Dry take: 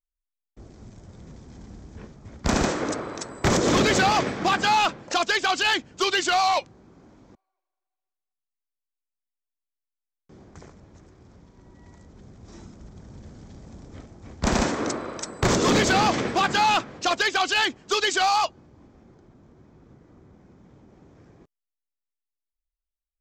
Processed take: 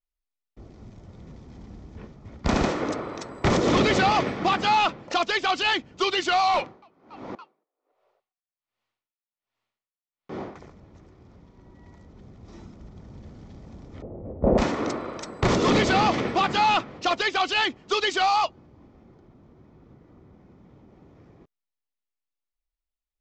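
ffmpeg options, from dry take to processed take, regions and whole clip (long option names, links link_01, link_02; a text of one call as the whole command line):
ffmpeg -i in.wav -filter_complex "[0:a]asettb=1/sr,asplit=3[link_01][link_02][link_03];[link_01]atrim=end=6.544[link_04];[link_02]atrim=start=6.54:end=10.6,asetpts=PTS-STARTPTS,afade=type=in:duration=0.004:curve=qsin,afade=type=out:start_time=4.056:duration=0.004:curve=qsin,asplit=4[link_05][link_06][link_07][link_08];[link_06]adelay=282,afreqshift=110,volume=-21.5dB[link_09];[link_07]adelay=564,afreqshift=220,volume=-29.7dB[link_10];[link_08]adelay=846,afreqshift=330,volume=-37.9dB[link_11];[link_05][link_09][link_10][link_11]amix=inputs=4:normalize=0,atrim=end_sample=179046,asplit=2[link_12][link_13];[link_13]highpass=frequency=720:poles=1,volume=31dB,asoftclip=type=tanh:threshold=-15.5dB[link_14];[link_12][link_14]amix=inputs=2:normalize=0,lowpass=frequency=1700:poles=1,volume=-6dB,aeval=exprs='val(0)*pow(10,-28*(0.5-0.5*cos(2*PI*1.3*n/s))/20)':channel_layout=same[link_15];[link_03]atrim=start=10.596[link_16];[link_04][link_15]acrossfade=duration=0.004:curve1=hsin:curve2=qsin[link_17];[link_17][link_16]acrossfade=duration=0.004:curve1=qsin:curve2=hsin,asettb=1/sr,asplit=3[link_18][link_19][link_20];[link_18]atrim=end=14.024[link_21];[link_19]atrim=start=14.02:end=14.58,asetpts=PTS-STARTPTS,afade=type=in:duration=0.004:curve=qsin,afade=type=out:start_time=0.556:duration=0.004:curve=qsin,aeval=exprs='val(0)+0.5*0.00944*sgn(val(0))':channel_layout=same,lowpass=frequency=540:width_type=q:width=3.4,asplit=2[link_22][link_23];[link_23]adelay=20,volume=-11.5dB[link_24];[link_22][link_24]amix=inputs=2:normalize=0,atrim=end_sample=24696[link_25];[link_20]atrim=start=14.576[link_26];[link_21][link_25]acrossfade=duration=0.004:curve1=hsin:curve2=qsin[link_27];[link_27][link_26]acrossfade=duration=0.004:curve1=qsin:curve2=hsin,lowpass=4300,bandreject=frequency=1600:width=9.8" out.wav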